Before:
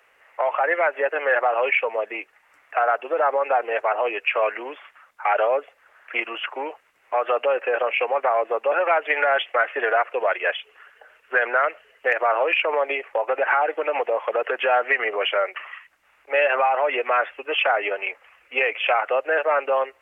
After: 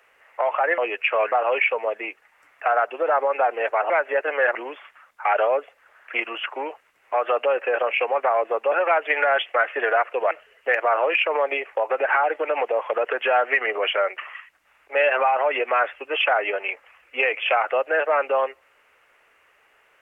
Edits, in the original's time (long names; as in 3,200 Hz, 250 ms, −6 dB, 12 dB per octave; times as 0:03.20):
0:00.78–0:01.43: swap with 0:04.01–0:04.55
0:10.31–0:11.69: remove